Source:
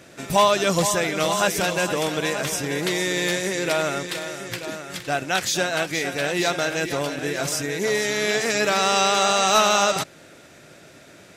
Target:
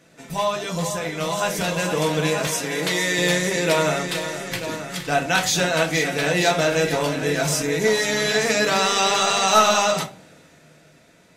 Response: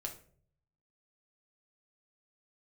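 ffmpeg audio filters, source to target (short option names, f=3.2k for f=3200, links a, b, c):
-filter_complex "[1:a]atrim=start_sample=2205,asetrate=66150,aresample=44100[a];[0:a][a]afir=irnorm=-1:irlink=0,dynaudnorm=f=280:g=11:m=11dB,asettb=1/sr,asplit=3[b][c][d];[b]atrim=end=2.474[e];[c]atrim=start=2.47:end=3.19,asetpts=PTS-STARTPTS,afade=t=in:d=0.004:c=qsin,afade=t=out:st=0.716:d=0.004:c=qsin,highpass=f=330:p=1[f];[d]atrim=start=3.186[g];[e][f]acrossfade=d=0.004:c1=hsin:c2=qsin[h];[h][g]acrossfade=d=0.004:c1=qsin:c2=hsin,volume=-2dB"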